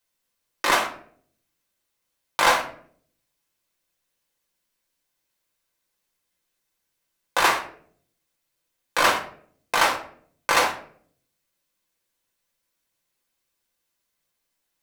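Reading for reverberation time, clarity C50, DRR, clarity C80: 0.55 s, 9.5 dB, 0.0 dB, 14.0 dB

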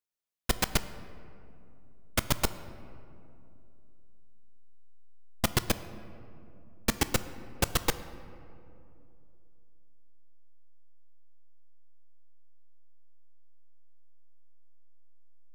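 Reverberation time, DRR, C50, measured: 2.7 s, 12.0 dB, 13.5 dB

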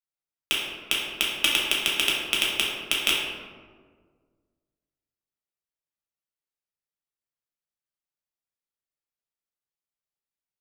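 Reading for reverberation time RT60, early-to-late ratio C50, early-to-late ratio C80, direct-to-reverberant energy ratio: 1.7 s, 0.5 dB, 2.5 dB, -5.5 dB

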